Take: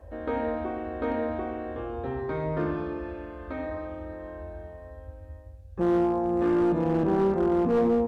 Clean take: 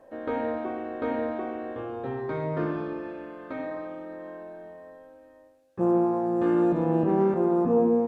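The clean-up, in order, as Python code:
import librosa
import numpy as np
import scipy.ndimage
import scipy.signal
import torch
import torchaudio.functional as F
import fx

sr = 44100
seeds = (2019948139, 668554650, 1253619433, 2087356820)

y = fx.fix_declip(x, sr, threshold_db=-18.5)
y = fx.noise_reduce(y, sr, print_start_s=5.27, print_end_s=5.77, reduce_db=6.0)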